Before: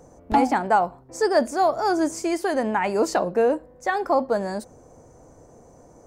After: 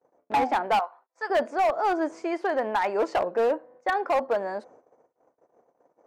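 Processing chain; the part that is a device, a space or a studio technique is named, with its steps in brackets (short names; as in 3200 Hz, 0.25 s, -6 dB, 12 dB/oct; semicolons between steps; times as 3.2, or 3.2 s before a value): 0.79–1.3 Chebyshev high-pass 1100 Hz, order 2; walkie-talkie (BPF 430–2300 Hz; hard clip -18.5 dBFS, distortion -12 dB; gate -51 dBFS, range -33 dB)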